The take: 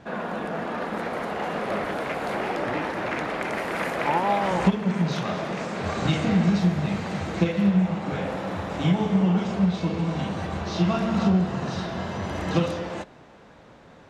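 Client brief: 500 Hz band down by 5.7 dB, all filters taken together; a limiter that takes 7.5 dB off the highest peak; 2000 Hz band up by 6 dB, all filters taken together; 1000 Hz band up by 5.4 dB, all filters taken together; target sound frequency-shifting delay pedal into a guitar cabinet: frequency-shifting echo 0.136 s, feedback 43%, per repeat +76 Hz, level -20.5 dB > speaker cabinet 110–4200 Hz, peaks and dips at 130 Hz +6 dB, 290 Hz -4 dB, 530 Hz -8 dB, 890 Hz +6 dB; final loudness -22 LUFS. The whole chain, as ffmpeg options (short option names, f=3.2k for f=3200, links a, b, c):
-filter_complex "[0:a]equalizer=f=500:t=o:g=-5.5,equalizer=f=1k:t=o:g=3.5,equalizer=f=2k:t=o:g=6.5,alimiter=limit=-15dB:level=0:latency=1,asplit=4[a][b][c][d];[b]adelay=136,afreqshift=76,volume=-20.5dB[e];[c]adelay=272,afreqshift=152,volume=-27.8dB[f];[d]adelay=408,afreqshift=228,volume=-35.2dB[g];[a][e][f][g]amix=inputs=4:normalize=0,highpass=110,equalizer=f=130:t=q:w=4:g=6,equalizer=f=290:t=q:w=4:g=-4,equalizer=f=530:t=q:w=4:g=-8,equalizer=f=890:t=q:w=4:g=6,lowpass=f=4.2k:w=0.5412,lowpass=f=4.2k:w=1.3066,volume=3.5dB"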